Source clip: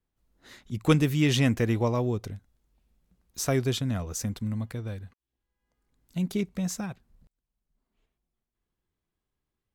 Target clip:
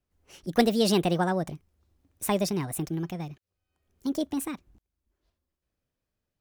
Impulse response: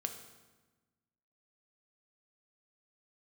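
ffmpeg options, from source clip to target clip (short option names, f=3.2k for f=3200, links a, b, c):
-af "asetrate=67032,aresample=44100"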